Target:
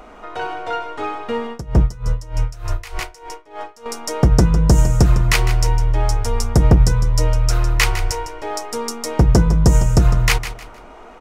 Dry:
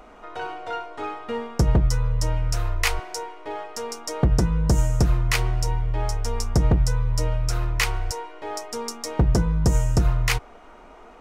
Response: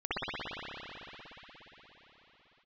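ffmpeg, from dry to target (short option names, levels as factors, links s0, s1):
-filter_complex "[0:a]aecho=1:1:155|310|465:0.251|0.0728|0.0211,asettb=1/sr,asplit=3[s0][s1][s2];[s0]atrim=end=1.504[s3];[s1]atrim=start=1.5:end=3.86,asetpts=PTS-STARTPTS,afade=t=in:d=0.004:c=qsin,afade=t=out:st=2.356:d=0.004:c=qsin,aeval=exprs='val(0)*pow(10,-21*(0.5-0.5*cos(2*PI*3.3*n/s))/20)':c=same[s4];[s2]atrim=start=3.856[s5];[s3][s4]acrossfade=d=0.004:c1=hsin:c2=qsin[s6];[s6][s5]acrossfade=d=0.004:c1=qsin:c2=hsin,volume=2"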